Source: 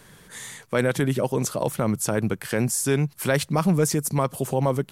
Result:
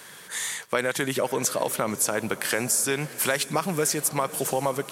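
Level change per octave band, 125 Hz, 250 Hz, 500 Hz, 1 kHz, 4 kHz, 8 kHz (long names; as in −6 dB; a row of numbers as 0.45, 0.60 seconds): −11.0, −7.0, −2.5, +0.5, +4.0, +4.0 decibels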